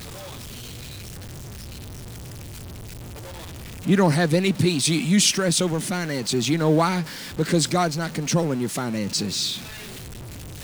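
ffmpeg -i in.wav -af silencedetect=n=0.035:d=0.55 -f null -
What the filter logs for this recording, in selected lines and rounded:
silence_start: 0.00
silence_end: 3.86 | silence_duration: 3.86
silence_start: 9.58
silence_end: 10.63 | silence_duration: 1.06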